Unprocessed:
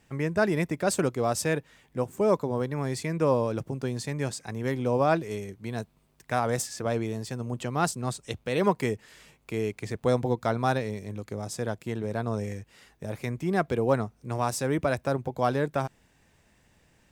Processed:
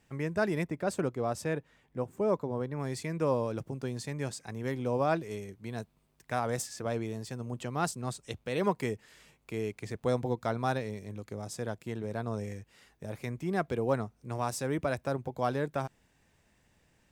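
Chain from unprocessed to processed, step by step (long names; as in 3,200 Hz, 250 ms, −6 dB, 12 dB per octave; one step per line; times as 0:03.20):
0:00.63–0:02.80: high-shelf EQ 2,700 Hz −8.5 dB
level −5 dB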